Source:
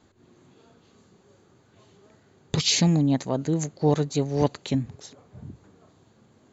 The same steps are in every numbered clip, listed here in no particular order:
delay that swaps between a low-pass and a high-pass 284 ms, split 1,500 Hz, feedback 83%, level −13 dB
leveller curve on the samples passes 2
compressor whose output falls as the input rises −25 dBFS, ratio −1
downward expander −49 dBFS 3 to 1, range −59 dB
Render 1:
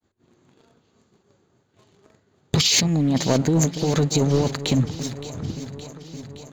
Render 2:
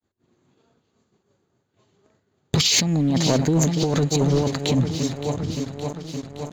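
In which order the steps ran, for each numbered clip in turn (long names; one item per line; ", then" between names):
compressor whose output falls as the input rises, then downward expander, then leveller curve on the samples, then delay that swaps between a low-pass and a high-pass
downward expander, then delay that swaps between a low-pass and a high-pass, then compressor whose output falls as the input rises, then leveller curve on the samples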